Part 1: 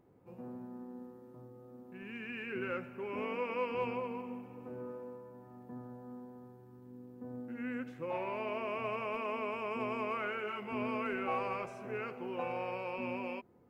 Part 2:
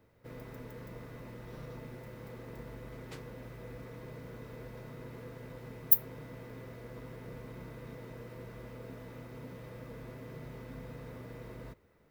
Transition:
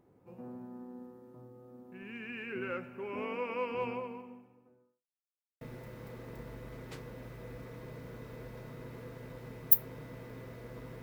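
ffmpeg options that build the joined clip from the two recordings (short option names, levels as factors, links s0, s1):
-filter_complex "[0:a]apad=whole_dur=11.02,atrim=end=11.02,asplit=2[s0][s1];[s0]atrim=end=5.07,asetpts=PTS-STARTPTS,afade=t=out:st=3.92:d=1.15:c=qua[s2];[s1]atrim=start=5.07:end=5.61,asetpts=PTS-STARTPTS,volume=0[s3];[1:a]atrim=start=1.81:end=7.22,asetpts=PTS-STARTPTS,afade=t=in:d=0.004:c=hsin[s4];[s2][s3][s4]concat=n=3:v=0:a=1"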